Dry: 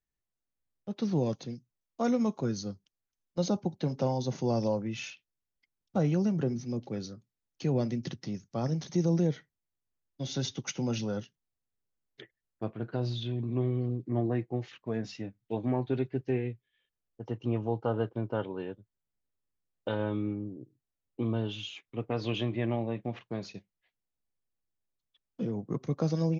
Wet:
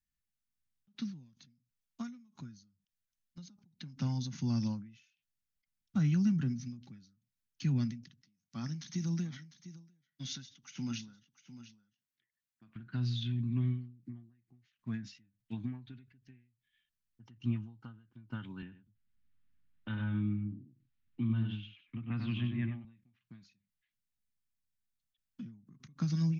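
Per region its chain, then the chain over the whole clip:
8.23–12.76 HPF 270 Hz 6 dB/oct + echo 0.701 s -13.5 dB
18.62–22.85 air absorption 360 m + echo 96 ms -5.5 dB + three-band squash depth 40%
whole clip: EQ curve 240 Hz 0 dB, 480 Hz -29 dB, 1500 Hz -1 dB; ending taper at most 110 dB/s

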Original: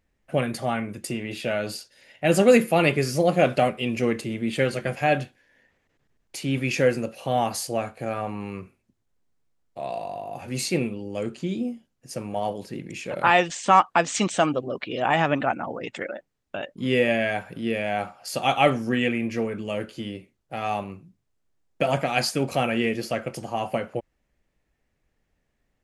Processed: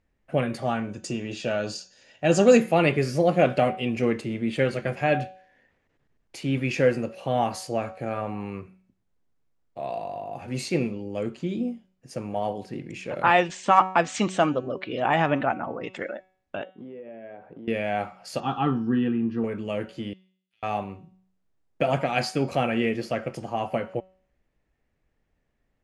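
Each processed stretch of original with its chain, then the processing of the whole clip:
0.65–2.6 synth low-pass 6600 Hz, resonance Q 3.6 + notch 2100 Hz, Q 5.9
16.63–17.68 band-pass 430 Hz, Q 1.1 + compressor 12:1, threshold -37 dBFS
18.4–19.44 Bessel high-pass 310 Hz + tilt -4.5 dB/oct + fixed phaser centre 2200 Hz, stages 6
20.13–20.63 compressor 3:1, threshold -49 dBFS + ladder high-pass 2800 Hz, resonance 45% + tube stage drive 49 dB, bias 0.4
whole clip: LPF 9900 Hz 12 dB/oct; high shelf 3700 Hz -8 dB; de-hum 187.4 Hz, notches 39

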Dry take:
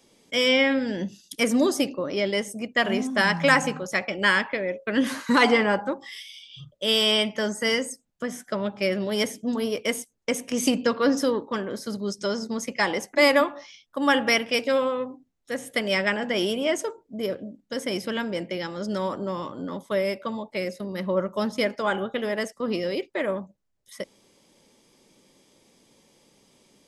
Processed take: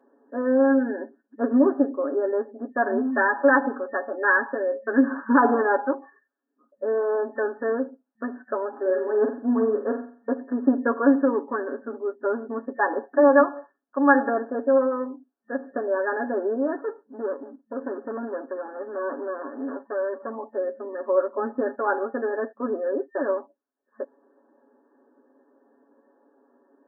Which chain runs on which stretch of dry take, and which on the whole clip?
8.7–10.33 G.711 law mismatch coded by mu + notch 590 Hz + flutter echo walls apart 7.7 m, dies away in 0.45 s
16.75–20.31 minimum comb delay 0.31 ms + overloaded stage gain 26.5 dB
whole clip: FFT band-pass 220–1800 Hz; comb 7.2 ms, depth 78%

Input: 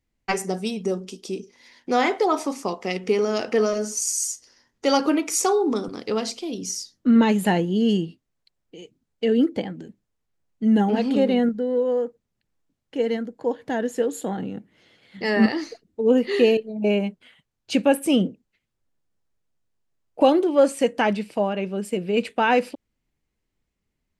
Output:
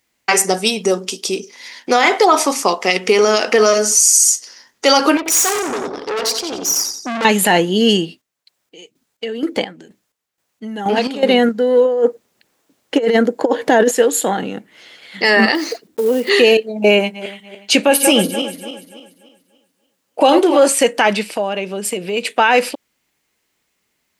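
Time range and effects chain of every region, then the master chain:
5.17–7.25 formant sharpening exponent 1.5 + feedback echo 89 ms, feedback 44%, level -7 dB + tube stage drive 29 dB, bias 0.75
8–11.23 compressor, threshold -20 dBFS + chopper 2.1 Hz, depth 65%, duty 45%
11.85–13.91 bell 400 Hz +7.5 dB 2.3 oct + negative-ratio compressor -20 dBFS, ratio -0.5
15.55–16.3 block floating point 5-bit + bell 350 Hz +8.5 dB 2.5 oct + compressor 2.5:1, threshold -29 dBFS
16.97–20.68 regenerating reverse delay 0.145 s, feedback 59%, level -11.5 dB + doubler 18 ms -13.5 dB
21.3–22.39 dynamic EQ 1400 Hz, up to -5 dB, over -40 dBFS, Q 1.1 + compressor 2.5:1, threshold -29 dBFS
whole clip: HPF 910 Hz 6 dB/oct; high shelf 8800 Hz +4 dB; maximiser +18 dB; gain -1 dB

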